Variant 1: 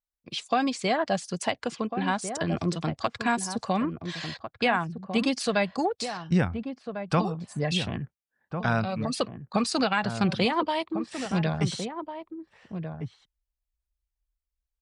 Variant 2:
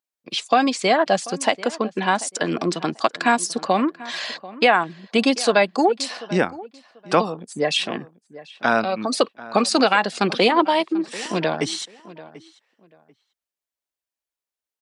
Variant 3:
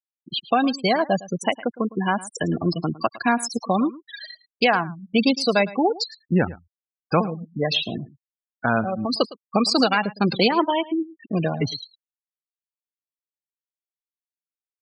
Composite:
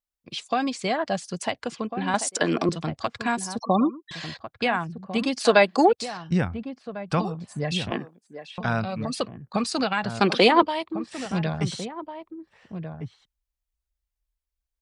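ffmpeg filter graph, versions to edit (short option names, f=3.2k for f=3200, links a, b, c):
-filter_complex "[1:a]asplit=4[a][b][c][d];[0:a]asplit=6[e][f][g][h][i][j];[e]atrim=end=2.142[k];[a]atrim=start=2.138:end=2.692[l];[f]atrim=start=2.688:end=3.592[m];[2:a]atrim=start=3.588:end=4.112[n];[g]atrim=start=4.108:end=5.452[o];[b]atrim=start=5.448:end=5.932[p];[h]atrim=start=5.928:end=7.912[q];[c]atrim=start=7.908:end=8.582[r];[i]atrim=start=8.578:end=10.202[s];[d]atrim=start=10.198:end=10.622[t];[j]atrim=start=10.618[u];[k][l]acrossfade=d=0.004:c1=hsin:c2=hsin[v];[v][m]acrossfade=d=0.004:c1=hsin:c2=hsin[w];[w][n]acrossfade=d=0.004:c1=hsin:c2=hsin[x];[x][o]acrossfade=d=0.004:c1=hsin:c2=hsin[y];[y][p]acrossfade=d=0.004:c1=hsin:c2=hsin[z];[z][q]acrossfade=d=0.004:c1=hsin:c2=hsin[aa];[aa][r]acrossfade=d=0.004:c1=hsin:c2=hsin[ab];[ab][s]acrossfade=d=0.004:c1=hsin:c2=hsin[ac];[ac][t]acrossfade=d=0.004:c1=hsin:c2=hsin[ad];[ad][u]acrossfade=d=0.004:c1=hsin:c2=hsin"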